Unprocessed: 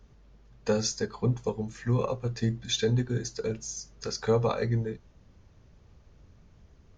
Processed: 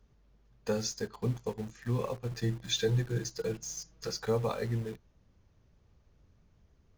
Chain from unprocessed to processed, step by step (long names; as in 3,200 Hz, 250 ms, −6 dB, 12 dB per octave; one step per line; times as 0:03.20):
0:02.31–0:04.25: comb filter 6.2 ms, depth 98%
in parallel at −7 dB: bit-depth reduction 6 bits, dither none
on the sum: level −8.5 dB